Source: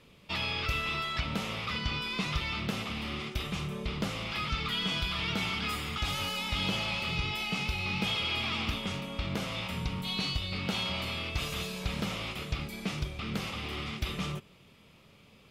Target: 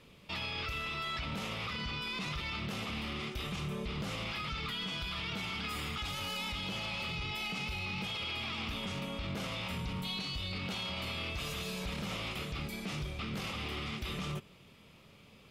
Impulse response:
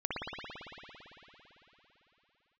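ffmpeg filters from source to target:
-af "alimiter=level_in=6dB:limit=-24dB:level=0:latency=1:release=16,volume=-6dB"

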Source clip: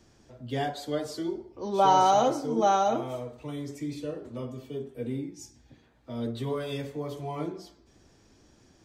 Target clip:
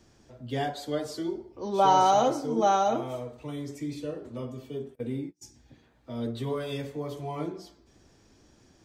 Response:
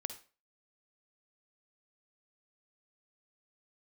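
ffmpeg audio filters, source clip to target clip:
-filter_complex "[0:a]asplit=3[a][b][c];[a]afade=t=out:st=4.94:d=0.02[d];[b]agate=range=-31dB:threshold=-36dB:ratio=16:detection=peak,afade=t=in:st=4.94:d=0.02,afade=t=out:st=5.41:d=0.02[e];[c]afade=t=in:st=5.41:d=0.02[f];[d][e][f]amix=inputs=3:normalize=0"

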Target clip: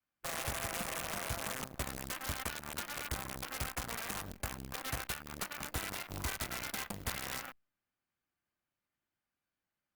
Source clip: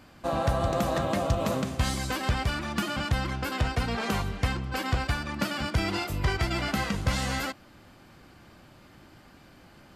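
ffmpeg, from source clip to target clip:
-af "afwtdn=0.0251,aeval=exprs='0.178*(cos(1*acos(clip(val(0)/0.178,-1,1)))-cos(1*PI/2))+0.00251*(cos(3*acos(clip(val(0)/0.178,-1,1)))-cos(3*PI/2))+0.0178*(cos(6*acos(clip(val(0)/0.178,-1,1)))-cos(6*PI/2))+0.0224*(cos(7*acos(clip(val(0)/0.178,-1,1)))-cos(7*PI/2))':c=same,equalizer=f=2k:w=0.53:g=9.5,acompressor=threshold=-28dB:ratio=5,adynamicequalizer=threshold=0.00251:dfrequency=400:dqfactor=3:tfrequency=400:tqfactor=3:attack=5:release=100:ratio=0.375:range=2.5:mode=cutabove:tftype=bell,acrusher=bits=3:mode=log:mix=0:aa=0.000001,aexciter=amount=1.2:drive=9.4:freq=12k,aeval=exprs='(mod(15*val(0)+1,2)-1)/15':c=same,volume=-5dB" -ar 48000 -c:a libopus -b:a 48k

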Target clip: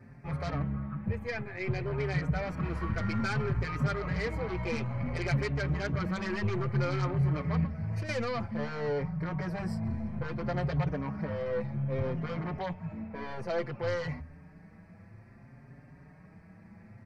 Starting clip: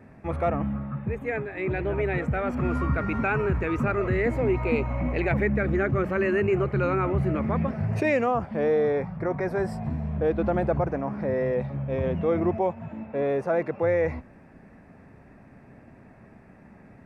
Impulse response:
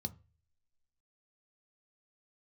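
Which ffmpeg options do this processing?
-filter_complex "[0:a]aeval=exprs='0.224*(cos(1*acos(clip(val(0)/0.224,-1,1)))-cos(1*PI/2))+0.0398*(cos(5*acos(clip(val(0)/0.224,-1,1)))-cos(5*PI/2))+0.0178*(cos(8*acos(clip(val(0)/0.224,-1,1)))-cos(8*PI/2))':c=same,asettb=1/sr,asplit=3[a][b][c];[a]atrim=end=7.644[d];[b]atrim=start=7.64:end=8.09,asetpts=PTS-STARTPTS,afade=t=in:d=0.004:c=qsin,afade=t=out:st=0.446:d=0.004:c=qsin,acrossover=split=150|420[e][f][g];[e]acompressor=threshold=-30dB:ratio=4[h];[f]acompressor=threshold=-36dB:ratio=4[i];[g]acompressor=threshold=-36dB:ratio=4[j];[h][i][j]amix=inputs=3:normalize=0[k];[c]atrim=start=8.086[l];[d][k]acrossfade=d=0.004:c1=hsin:c2=qsin[m];[m][l]acrossfade=d=0.004:c1=qsin:c2=hsin,asplit=2[n][o];[o]highshelf=f=2k:t=q:w=3:g=12[p];[1:a]atrim=start_sample=2205,lowpass=3.6k[q];[p][q]afir=irnorm=-1:irlink=0,volume=-10dB[r];[n][r]amix=inputs=2:normalize=0,asplit=2[s][t];[t]adelay=5.3,afreqshift=0.58[u];[s][u]amix=inputs=2:normalize=1,volume=-7dB"

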